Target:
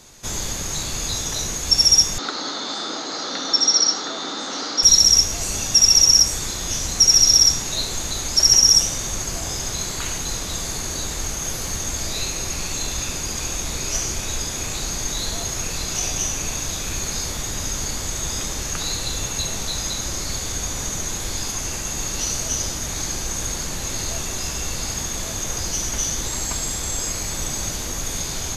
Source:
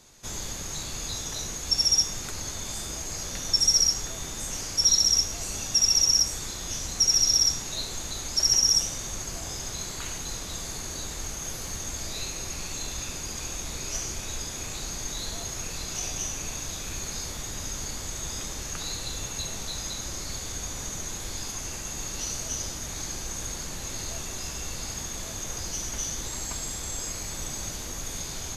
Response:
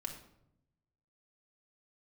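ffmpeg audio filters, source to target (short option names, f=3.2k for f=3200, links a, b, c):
-filter_complex "[0:a]asettb=1/sr,asplit=3[a][b][c];[a]atrim=end=2.184[d];[b]atrim=start=2.18:end=4.83,asetpts=PTS-STARTPTS,afade=t=in:d=0.004:c=qsin,afade=t=out:st=2.646:d=0.004:c=qsin,highpass=f=230:w=0.5412,highpass=f=230:w=1.3066,equalizer=f=280:t=q:w=4:g=8,equalizer=f=490:t=q:w=4:g=3,equalizer=f=800:t=q:w=4:g=5,equalizer=f=1.3k:t=q:w=4:g=10,equalizer=f=2.5k:t=q:w=4:g=-7,equalizer=f=4k:t=q:w=4:g=10,lowpass=f=5.1k:w=0.5412,lowpass=f=5.1k:w=1.3066[e];[c]atrim=start=4.826[f];[d][e]acrossfade=d=0.004:c1=hsin:c2=qsin[g];[g][f]acrossfade=d=0.004:c1=qsin:c2=hsin,volume=8dB"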